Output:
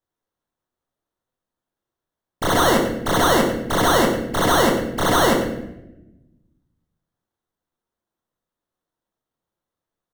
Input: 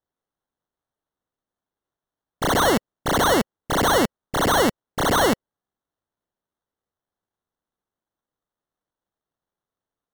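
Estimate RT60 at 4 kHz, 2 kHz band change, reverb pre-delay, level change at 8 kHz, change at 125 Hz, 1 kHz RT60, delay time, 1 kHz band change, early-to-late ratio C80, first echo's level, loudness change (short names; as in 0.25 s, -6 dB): 0.65 s, +2.0 dB, 3 ms, +1.5 dB, +3.5 dB, 0.75 s, 0.106 s, +2.0 dB, 7.0 dB, -12.0 dB, +2.5 dB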